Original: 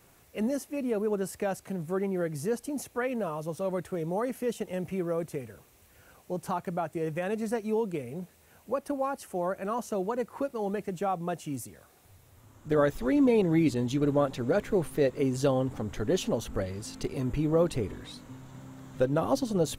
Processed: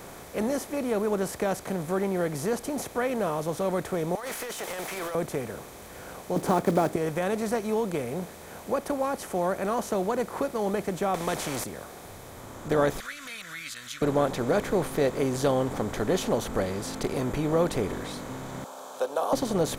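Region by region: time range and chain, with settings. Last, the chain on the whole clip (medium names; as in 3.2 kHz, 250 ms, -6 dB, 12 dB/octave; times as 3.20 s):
4.15–5.15 s: high-pass 1.3 kHz + compressor with a negative ratio -51 dBFS + waveshaping leveller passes 3
6.36–6.96 s: block-companded coder 5-bit + peaking EQ 290 Hz +15 dB 1.9 oct
11.14–11.64 s: treble shelf 10 kHz -11 dB + spectrum-flattening compressor 2:1
13.00–14.02 s: elliptic high-pass 1.4 kHz + upward compressor, threshold -43 dBFS
18.64–19.33 s: steep high-pass 360 Hz + static phaser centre 820 Hz, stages 4
whole clip: spectral levelling over time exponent 0.6; bass shelf 430 Hz -3 dB; band-stop 2.8 kHz, Q 11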